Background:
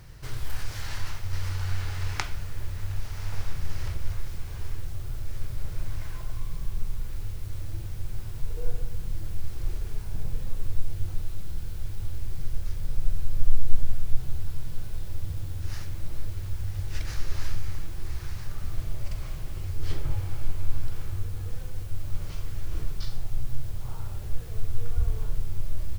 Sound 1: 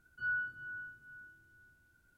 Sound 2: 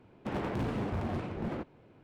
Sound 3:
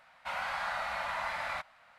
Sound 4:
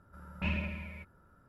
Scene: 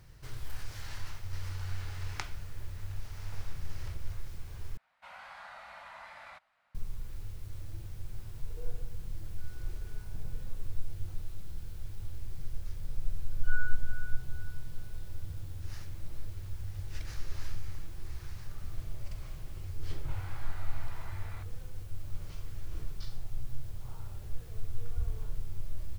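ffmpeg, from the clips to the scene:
-filter_complex "[3:a]asplit=2[a][b];[1:a]asplit=2[c][d];[0:a]volume=-8dB[e];[c]acompressor=threshold=-46dB:ratio=6:attack=3.2:release=140:knee=1:detection=peak[f];[e]asplit=2[g][h];[g]atrim=end=4.774[i];[a]atrim=end=1.98,asetpts=PTS-STARTPTS,volume=-13.5dB[j];[h]atrim=start=6.746[k];[f]atrim=end=2.17,asetpts=PTS-STARTPTS,volume=-17dB,afade=t=in:d=0.004:c=hsin,afade=t=out:st=2.166:d=0.004:c=hsin,adelay=9200[l];[d]atrim=end=2.17,asetpts=PTS-STARTPTS,volume=-3dB,afade=t=in:d=0.004:c=hsin,afade=t=out:st=2.166:d=0.004:c=hsin,adelay=13260[m];[b]atrim=end=1.98,asetpts=PTS-STARTPTS,volume=-16.5dB,afade=t=in:d=0.004:c=hsin,afade=t=out:st=1.976:d=0.004:c=hsin,adelay=19820[n];[i][j]acrossfade=d=0.004:c1=hsin:c2=hsin[o];[o][k]acrossfade=d=0.004:c1=hsin:c2=hsin[p];[p][l][m][n]amix=inputs=4:normalize=0"

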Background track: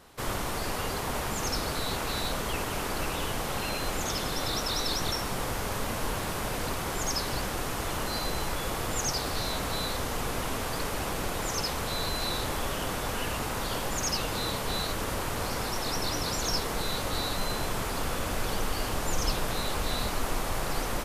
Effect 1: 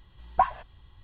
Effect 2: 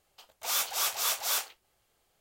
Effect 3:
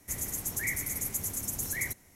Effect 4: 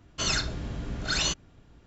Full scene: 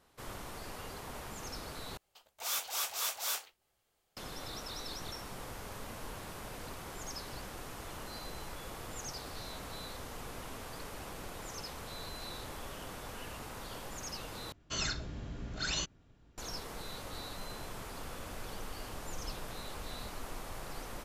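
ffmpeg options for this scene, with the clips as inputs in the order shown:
-filter_complex "[0:a]volume=-13dB,asplit=3[a][b][c];[a]atrim=end=1.974[d];[2:a]atrim=end=2.2,asetpts=PTS-STARTPTS,volume=-6dB[e];[b]atrim=start=4.166:end=14.524[f];[4:a]atrim=end=1.86,asetpts=PTS-STARTPTS,volume=-8dB[g];[c]atrim=start=16.376[h];[d][e]acrossfade=d=0.004:c1=hsin:c2=hsin[i];[i][f]acrossfade=d=0.004:c1=hsin:c2=hsin[j];[j][g]acrossfade=d=0.004:c1=hsin:c2=hsin[k];[k][h]acrossfade=d=0.004:c1=hsin:c2=hsin"

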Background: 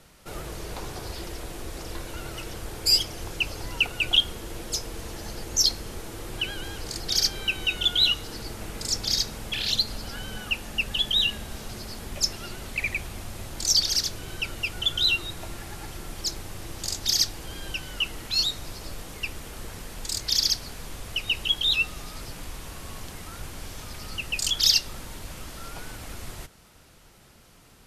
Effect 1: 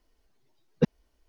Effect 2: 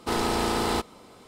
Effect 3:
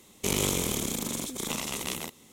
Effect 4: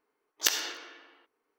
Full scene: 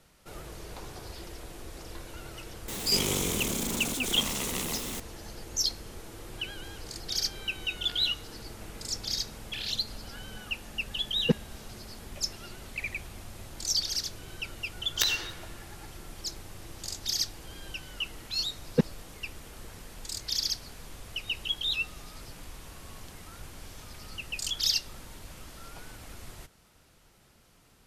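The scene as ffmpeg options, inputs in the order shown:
-filter_complex "[4:a]asplit=2[a][b];[1:a]asplit=2[c][d];[0:a]volume=-7dB[e];[3:a]aeval=exprs='val(0)+0.5*0.0473*sgn(val(0))':c=same[f];[a]aresample=11025,aresample=44100[g];[f]atrim=end=2.32,asetpts=PTS-STARTPTS,volume=-5dB,afade=t=in:d=0.004:c=hsin,afade=t=out:st=2.316:d=0.004:c=hsin,adelay=2680[h];[g]atrim=end=1.58,asetpts=PTS-STARTPTS,volume=-17dB,afade=t=in:d=0.004:c=hsin,afade=t=out:st=1.576:d=0.004:c=hsin,adelay=7430[i];[c]atrim=end=1.28,asetpts=PTS-STARTPTS,volume=-1.5dB,afade=t=in:d=0.004:c=hsin,afade=t=out:st=1.276:d=0.004:c=hsin,adelay=10470[j];[b]atrim=end=1.58,asetpts=PTS-STARTPTS,volume=-2.5dB,afade=t=in:d=0.004:c=hsin,afade=t=out:st=1.576:d=0.004:c=hsin,adelay=14550[k];[d]atrim=end=1.28,asetpts=PTS-STARTPTS,volume=-0.5dB,afade=t=in:d=0.004:c=hsin,afade=t=out:st=1.276:d=0.004:c=hsin,adelay=792036S[l];[e][h][i][j][k][l]amix=inputs=6:normalize=0"

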